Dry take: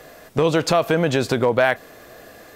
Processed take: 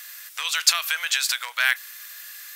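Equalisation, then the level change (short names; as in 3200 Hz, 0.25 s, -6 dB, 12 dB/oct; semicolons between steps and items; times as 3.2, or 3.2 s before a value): HPF 1400 Hz 24 dB/oct; high shelf 2400 Hz +11 dB; high shelf 11000 Hz +7 dB; -1.0 dB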